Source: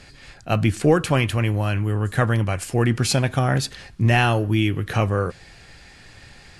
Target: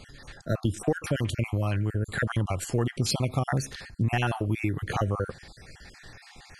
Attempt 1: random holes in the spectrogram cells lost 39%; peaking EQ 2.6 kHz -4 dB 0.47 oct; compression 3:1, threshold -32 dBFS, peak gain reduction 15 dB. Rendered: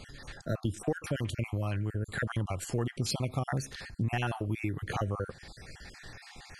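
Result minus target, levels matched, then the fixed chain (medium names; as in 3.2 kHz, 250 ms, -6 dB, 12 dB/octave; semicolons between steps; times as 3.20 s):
compression: peak gain reduction +5.5 dB
random holes in the spectrogram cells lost 39%; peaking EQ 2.6 kHz -4 dB 0.47 oct; compression 3:1, threshold -24 dBFS, peak gain reduction 9.5 dB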